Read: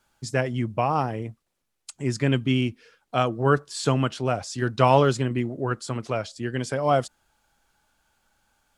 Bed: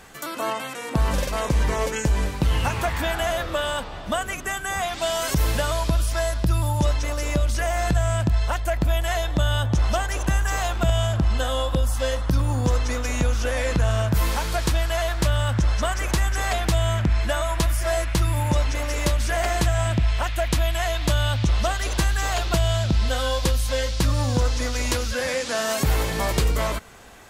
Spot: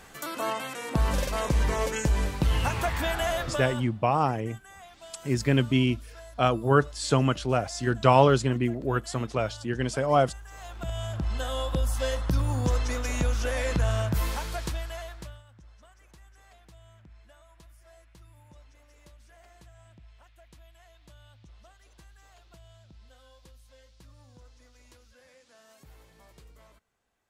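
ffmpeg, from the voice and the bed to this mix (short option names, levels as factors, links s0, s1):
-filter_complex "[0:a]adelay=3250,volume=0.944[s0];[1:a]volume=5.31,afade=t=out:st=3.37:d=0.58:silence=0.112202,afade=t=in:st=10.5:d=1.41:silence=0.125893,afade=t=out:st=13.91:d=1.52:silence=0.0398107[s1];[s0][s1]amix=inputs=2:normalize=0"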